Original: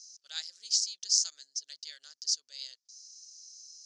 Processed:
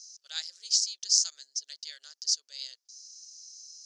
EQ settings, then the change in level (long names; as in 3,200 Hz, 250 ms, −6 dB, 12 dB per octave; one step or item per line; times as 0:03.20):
high-pass filter 340 Hz 24 dB per octave
+2.5 dB